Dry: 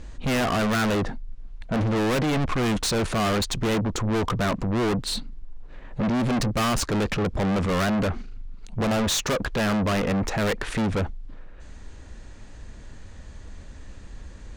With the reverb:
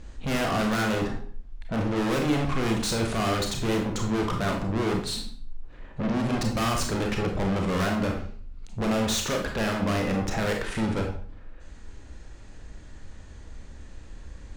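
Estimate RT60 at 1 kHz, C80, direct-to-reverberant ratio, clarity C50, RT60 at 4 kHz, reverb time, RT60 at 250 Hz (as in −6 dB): 0.50 s, 10.0 dB, 1.5 dB, 5.5 dB, 0.45 s, 0.50 s, 0.60 s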